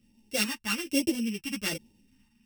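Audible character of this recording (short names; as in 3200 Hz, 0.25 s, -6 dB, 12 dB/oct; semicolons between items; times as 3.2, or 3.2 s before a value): a buzz of ramps at a fixed pitch in blocks of 16 samples; phasing stages 2, 1.2 Hz, lowest notch 530–1300 Hz; random-step tremolo; a shimmering, thickened sound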